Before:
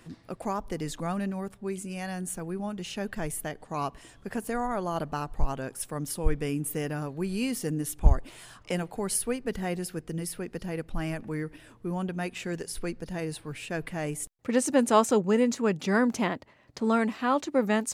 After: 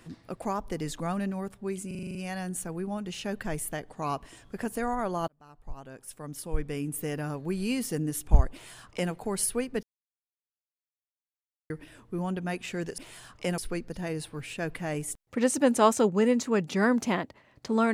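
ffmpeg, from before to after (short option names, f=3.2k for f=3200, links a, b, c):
-filter_complex "[0:a]asplit=13[a][b][c][d][e][f][g][h][i][j][k][l][m];[a]atrim=end=1.912[n];[b]atrim=start=1.868:end=1.912[o];[c]atrim=start=1.868:end=1.912[p];[d]atrim=start=1.868:end=1.912[q];[e]atrim=start=1.868:end=1.912[r];[f]atrim=start=1.868:end=1.912[s];[g]atrim=start=1.868:end=1.912[t];[h]atrim=start=1.868:end=5,asetpts=PTS-STARTPTS,afade=t=out:st=3.128:d=0.004:c=hsin[u];[i]atrim=start=5:end=9.55,asetpts=PTS-STARTPTS,afade=t=in:d=2.12,afade=t=out:st=4.546:d=0.004:c=hsin[v];[j]atrim=start=9.55:end=11.42,asetpts=PTS-STARTPTS,volume=0[w];[k]atrim=start=11.42:end=12.702,asetpts=PTS-STARTPTS,afade=t=in:d=0.004:c=hsin[x];[l]atrim=start=8.238:end=8.842[y];[m]atrim=start=12.698[z];[n][o]acrossfade=d=0.004:c1=hsin:c2=hsin[aa];[aa][p]acrossfade=d=0.004:c1=hsin:c2=hsin[ab];[ab][q]acrossfade=d=0.004:c1=hsin:c2=hsin[ac];[ac][r]acrossfade=d=0.004:c1=hsin:c2=hsin[ad];[ad][s]acrossfade=d=0.004:c1=hsin:c2=hsin[ae];[ae][t]acrossfade=d=0.004:c1=hsin:c2=hsin[af];[u][v][w][x]concat=n=4:v=0:a=1[ag];[af][ag]acrossfade=d=0.004:c1=hsin:c2=hsin[ah];[ah][y]acrossfade=d=0.004:c1=hsin:c2=hsin[ai];[ai][z]acrossfade=d=0.004:c1=hsin:c2=hsin"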